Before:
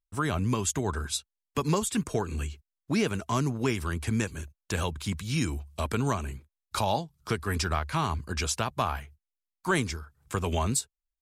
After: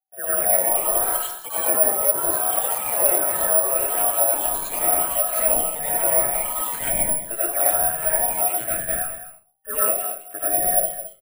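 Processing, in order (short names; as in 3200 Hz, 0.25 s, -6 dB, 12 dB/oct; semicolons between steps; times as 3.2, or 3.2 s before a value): band inversion scrambler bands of 1000 Hz; HPF 150 Hz 24 dB/oct; mistuned SSB -240 Hz 230–3400 Hz; notches 50/100/150/200 Hz; echo 0.214 s -12.5 dB; echoes that change speed 0.28 s, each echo +5 st, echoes 3; reverb RT60 0.40 s, pre-delay 55 ms, DRR -9 dB; treble ducked by the level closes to 2200 Hz, closed at -12 dBFS; careless resampling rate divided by 4×, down filtered, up zero stuff; gain -10 dB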